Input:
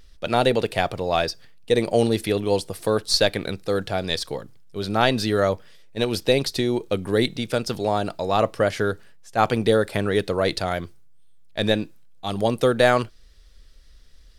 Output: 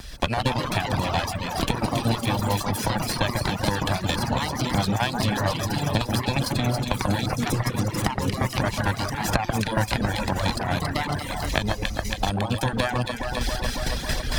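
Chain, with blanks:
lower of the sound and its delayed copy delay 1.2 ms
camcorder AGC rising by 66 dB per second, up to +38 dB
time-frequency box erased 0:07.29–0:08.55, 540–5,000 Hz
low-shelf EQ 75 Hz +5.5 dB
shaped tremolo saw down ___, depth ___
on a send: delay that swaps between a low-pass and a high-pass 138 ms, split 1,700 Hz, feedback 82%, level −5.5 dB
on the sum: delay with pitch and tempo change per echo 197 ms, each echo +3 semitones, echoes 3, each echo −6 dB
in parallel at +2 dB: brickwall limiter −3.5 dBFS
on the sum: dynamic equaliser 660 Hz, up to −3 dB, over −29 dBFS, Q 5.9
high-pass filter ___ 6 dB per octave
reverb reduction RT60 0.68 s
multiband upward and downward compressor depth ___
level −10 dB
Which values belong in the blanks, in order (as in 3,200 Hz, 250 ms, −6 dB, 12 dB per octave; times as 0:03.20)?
4.4 Hz, 65%, 58 Hz, 70%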